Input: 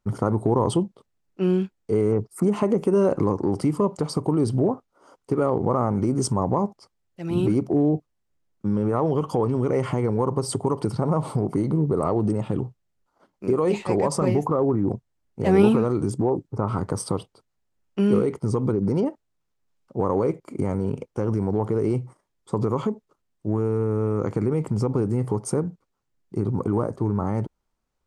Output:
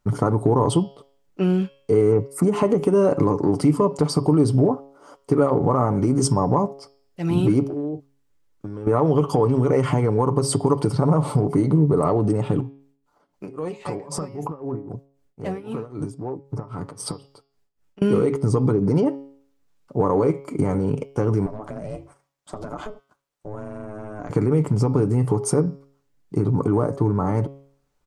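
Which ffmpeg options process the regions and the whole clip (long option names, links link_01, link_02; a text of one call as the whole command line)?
ffmpeg -i in.wav -filter_complex "[0:a]asettb=1/sr,asplit=3[link_01][link_02][link_03];[link_01]atrim=end=7.664[link_04];[link_02]atrim=start=7.66:end=8.87,asetpts=PTS-STARTPTS,afade=type=in:duration=0.004:curve=qsin,afade=type=out:start_time=1.206:duration=0.004:curve=qsin,equalizer=frequency=180:width=2:gain=-9.5,bandreject=frequency=700:width=6.1,acompressor=threshold=-33dB:ratio=8:attack=3.2:release=140:knee=1:detection=peak[link_05];[link_03]atrim=start=8.866[link_06];[link_04][link_05]acrossfade=duration=0.004:curve1=hsin:curve2=qsin[link_07];[link_07][link_06]acrossfade=duration=0.004:curve1=qsin:curve2=hsin,asettb=1/sr,asplit=3[link_08][link_09][link_10];[link_08]atrim=end=12.604[link_11];[link_09]atrim=start=12.6:end=18.02,asetpts=PTS-STARTPTS,afade=type=in:duration=0.004:curve=qsin,afade=type=out:start_time=5.416:duration=0.004:curve=qsin,acompressor=threshold=-29dB:ratio=6:attack=3.2:release=140:knee=1:detection=peak,tremolo=f=3.8:d=0.87[link_12];[link_10]atrim=start=18.016[link_13];[link_11][link_12]acrossfade=duration=0.004:curve1=hsin:curve2=qsin[link_14];[link_14][link_13]acrossfade=duration=0.004:curve1=qsin:curve2=hsin,asettb=1/sr,asplit=3[link_15][link_16][link_17];[link_15]atrim=end=21.464[link_18];[link_16]atrim=start=21.46:end=24.3,asetpts=PTS-STARTPTS,afade=type=in:duration=0.004:curve=qsin,afade=type=out:start_time=2.836:duration=0.004:curve=qsin,highpass=frequency=460:poles=1,aeval=exprs='val(0)*sin(2*PI*210*n/s)':channel_layout=same,acompressor=threshold=-36dB:ratio=3:attack=3.2:release=140:knee=1:detection=peak[link_19];[link_17]atrim=start=24.296[link_20];[link_18][link_19]acrossfade=duration=0.004:curve1=hsin:curve2=qsin[link_21];[link_21][link_20]acrossfade=duration=0.004:curve1=qsin:curve2=hsin,bandreject=frequency=138.1:width_type=h:width=4,bandreject=frequency=276.2:width_type=h:width=4,bandreject=frequency=414.3:width_type=h:width=4,bandreject=frequency=552.4:width_type=h:width=4,bandreject=frequency=690.5:width_type=h:width=4,bandreject=frequency=828.6:width_type=h:width=4,bandreject=frequency=966.7:width_type=h:width=4,bandreject=frequency=1104.8:width_type=h:width=4,bandreject=frequency=1242.9:width_type=h:width=4,bandreject=frequency=1381:width_type=h:width=4,bandreject=frequency=1519.1:width_type=h:width=4,bandreject=frequency=1657.2:width_type=h:width=4,bandreject=frequency=1795.3:width_type=h:width=4,bandreject=frequency=1933.4:width_type=h:width=4,bandreject=frequency=2071.5:width_type=h:width=4,bandreject=frequency=2209.6:width_type=h:width=4,bandreject=frequency=2347.7:width_type=h:width=4,bandreject=frequency=2485.8:width_type=h:width=4,bandreject=frequency=2623.9:width_type=h:width=4,bandreject=frequency=2762:width_type=h:width=4,bandreject=frequency=2900.1:width_type=h:width=4,bandreject=frequency=3038.2:width_type=h:width=4,bandreject=frequency=3176.3:width_type=h:width=4,bandreject=frequency=3314.4:width_type=h:width=4,bandreject=frequency=3452.5:width_type=h:width=4,bandreject=frequency=3590.6:width_type=h:width=4,bandreject=frequency=3728.7:width_type=h:width=4,bandreject=frequency=3866.8:width_type=h:width=4,bandreject=frequency=4004.9:width_type=h:width=4,bandreject=frequency=4143:width_type=h:width=4,bandreject=frequency=4281.1:width_type=h:width=4,bandreject=frequency=4419.2:width_type=h:width=4,bandreject=frequency=4557.3:width_type=h:width=4,bandreject=frequency=4695.4:width_type=h:width=4,bandreject=frequency=4833.5:width_type=h:width=4,bandreject=frequency=4971.6:width_type=h:width=4,bandreject=frequency=5109.7:width_type=h:width=4,bandreject=frequency=5247.8:width_type=h:width=4,bandreject=frequency=5385.9:width_type=h:width=4,bandreject=frequency=5524:width_type=h:width=4,acompressor=threshold=-26dB:ratio=1.5,aecho=1:1:6.9:0.41,volume=6dB" out.wav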